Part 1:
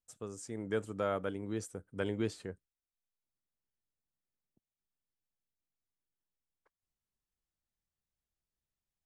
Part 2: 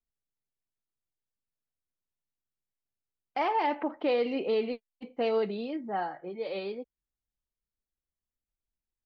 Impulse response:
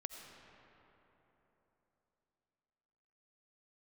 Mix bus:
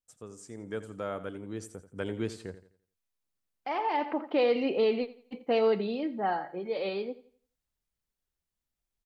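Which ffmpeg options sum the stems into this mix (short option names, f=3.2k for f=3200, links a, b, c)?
-filter_complex "[0:a]dynaudnorm=f=210:g=21:m=6dB,volume=-2.5dB,asplit=3[a][b][c];[b]volume=-13.5dB[d];[1:a]adelay=300,volume=2.5dB,asplit=2[e][f];[f]volume=-17.5dB[g];[c]apad=whole_len=412336[h];[e][h]sidechaincompress=threshold=-51dB:ratio=4:attack=11:release=1330[i];[d][g]amix=inputs=2:normalize=0,aecho=0:1:85|170|255|340|425:1|0.34|0.116|0.0393|0.0134[j];[a][i][j]amix=inputs=3:normalize=0"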